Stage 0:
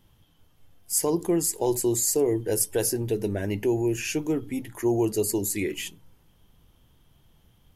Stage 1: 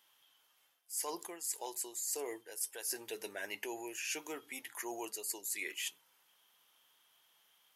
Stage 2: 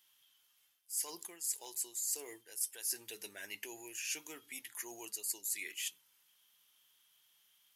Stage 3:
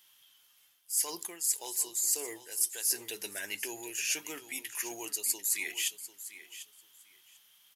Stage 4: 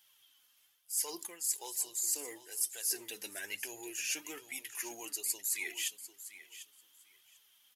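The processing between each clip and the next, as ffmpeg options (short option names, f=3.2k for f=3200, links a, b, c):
-af "highpass=1.1k,areverse,acompressor=threshold=-36dB:ratio=10,areverse"
-af "acrusher=bits=8:mode=log:mix=0:aa=0.000001,equalizer=f=650:t=o:w=2.9:g=-13,volume=2dB"
-af "aecho=1:1:745|1490:0.2|0.0339,volume=7.5dB"
-af "flanger=delay=1.2:depth=2.9:regen=35:speed=1.1:shape=triangular"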